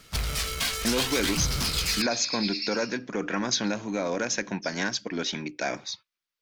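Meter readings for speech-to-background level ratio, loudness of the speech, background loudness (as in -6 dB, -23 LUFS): -1.5 dB, -29.0 LUFS, -27.5 LUFS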